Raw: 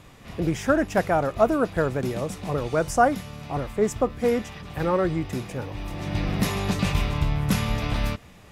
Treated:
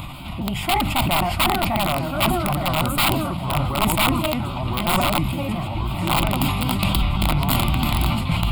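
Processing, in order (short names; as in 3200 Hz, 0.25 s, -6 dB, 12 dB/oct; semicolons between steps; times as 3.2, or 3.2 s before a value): trilling pitch shifter +4.5 st, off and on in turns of 0.135 s; upward compressor, threshold -27 dBFS; echoes that change speed 0.63 s, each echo -2 st, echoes 3; wrapped overs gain 14 dB; fixed phaser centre 1700 Hz, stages 6; sustainer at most 36 dB/s; gain +4.5 dB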